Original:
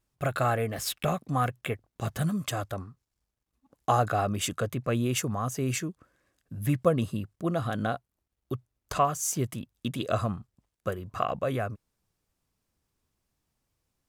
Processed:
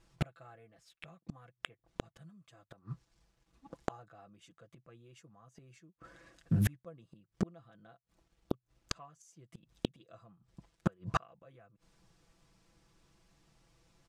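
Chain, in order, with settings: low-pass 6.7 kHz 12 dB/octave; comb 6 ms, depth 66%; inverted gate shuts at -27 dBFS, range -41 dB; loudspeaker Doppler distortion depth 0.23 ms; trim +10.5 dB

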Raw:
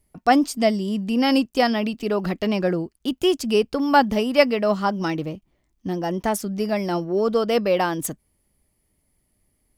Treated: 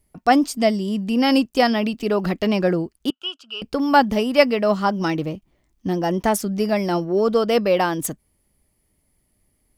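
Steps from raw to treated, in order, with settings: in parallel at +0.5 dB: gain riding 2 s; 3.10–3.62 s: on the sum: two resonant band-passes 2 kHz, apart 1.1 oct; trim -4.5 dB

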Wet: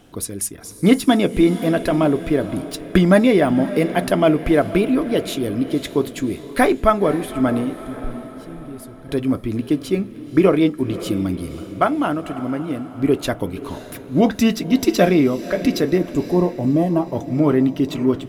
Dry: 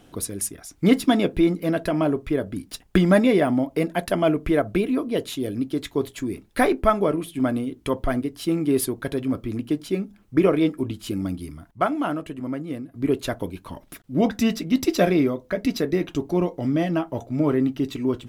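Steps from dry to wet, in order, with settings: 7.74–9.09 s: amplifier tone stack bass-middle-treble 10-0-1; 15.98–17.12 s: time-frequency box 1.2–6.4 kHz -14 dB; echo that smears into a reverb 541 ms, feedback 48%, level -14 dB; level rider gain up to 3 dB; trim +2 dB

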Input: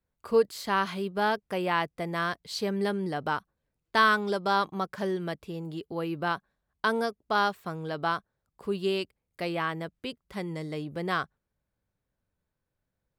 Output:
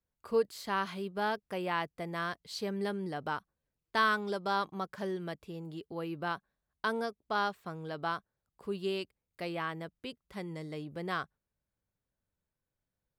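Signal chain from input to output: 6.93–7.76 s: treble shelf 9.6 kHz -5 dB; trim -6 dB

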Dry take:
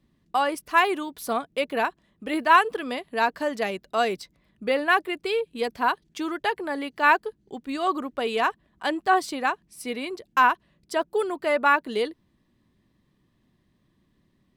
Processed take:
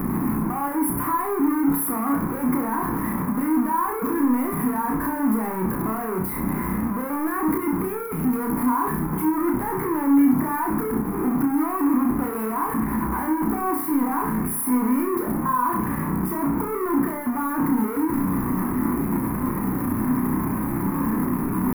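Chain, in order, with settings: one-bit comparator; FFT filter 120 Hz 0 dB, 270 Hz +13 dB, 610 Hz -7 dB, 1 kHz +11 dB, 1.5 kHz 0 dB, 2.2 kHz -5 dB, 3.2 kHz -28 dB, 7.5 kHz -23 dB, 11 kHz +7 dB; tempo 0.67×; on a send: flutter echo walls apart 5.5 m, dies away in 0.48 s; on the sum: endings held to a fixed fall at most 150 dB/s; trim -5 dB

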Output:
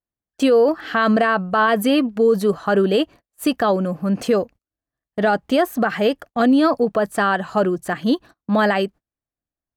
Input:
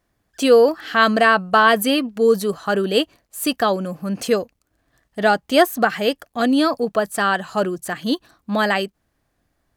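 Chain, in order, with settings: treble shelf 2.8 kHz -11 dB; gate -40 dBFS, range -28 dB; peak limiter -13 dBFS, peak gain reduction 9.5 dB; trim +4.5 dB

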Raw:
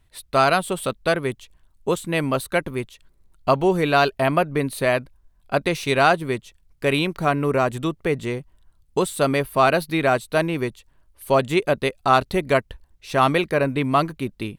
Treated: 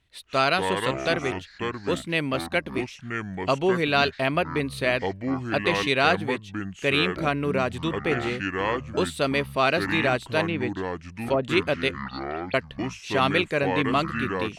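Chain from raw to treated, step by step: frequency weighting D; 10.45–11.43 s: low-pass that closes with the level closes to 930 Hz, closed at -13.5 dBFS; tilt EQ -2 dB/octave; 11.99–12.54 s: auto-wah 630–4400 Hz, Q 21, up, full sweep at -14 dBFS; ever faster or slower copies 100 ms, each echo -6 st, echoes 2, each echo -6 dB; trim -6.5 dB

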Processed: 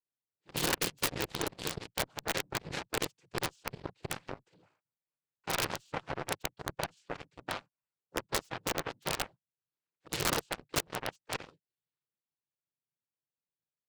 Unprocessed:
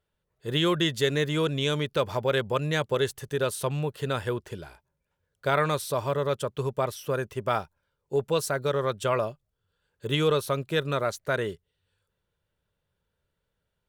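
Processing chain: noise-vocoded speech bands 8; Chebyshev shaper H 7 -16 dB, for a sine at -9 dBFS; integer overflow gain 15.5 dB; trim -3.5 dB

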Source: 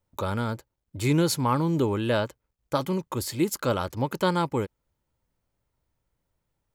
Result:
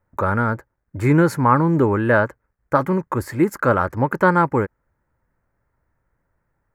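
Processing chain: resonant high shelf 2.4 kHz -12 dB, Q 3; trim +7 dB

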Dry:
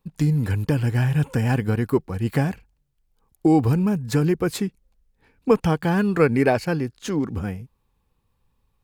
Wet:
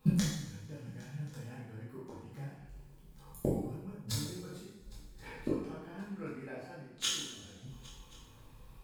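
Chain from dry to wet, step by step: inverted gate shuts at -24 dBFS, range -38 dB; chorus voices 4, 0.31 Hz, delay 24 ms, depth 4.4 ms; on a send: shuffle delay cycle 1079 ms, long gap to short 3:1, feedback 42%, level -22 dB; on the sum: two-slope reverb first 0.78 s, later 2.2 s, DRR -6.5 dB; trim +9 dB

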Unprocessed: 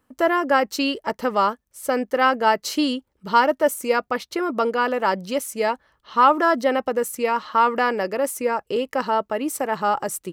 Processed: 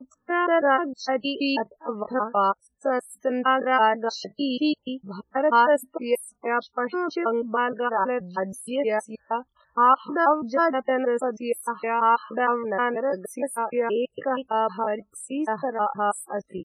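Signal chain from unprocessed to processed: slices played last to first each 98 ms, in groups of 2; loudest bins only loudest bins 32; tempo 0.62×; trim -2.5 dB

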